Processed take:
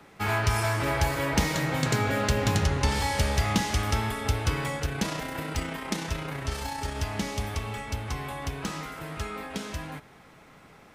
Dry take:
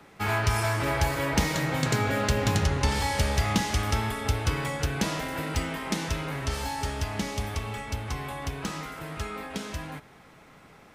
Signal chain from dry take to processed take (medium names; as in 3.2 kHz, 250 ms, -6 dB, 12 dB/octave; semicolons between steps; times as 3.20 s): 4.79–6.96 s: AM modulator 30 Hz, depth 25%